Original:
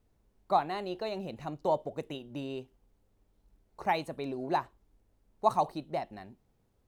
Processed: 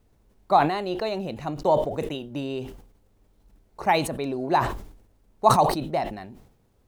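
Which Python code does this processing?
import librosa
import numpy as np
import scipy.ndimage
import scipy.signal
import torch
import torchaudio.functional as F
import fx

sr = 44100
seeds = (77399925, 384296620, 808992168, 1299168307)

y = fx.sustainer(x, sr, db_per_s=81.0)
y = y * librosa.db_to_amplitude(7.5)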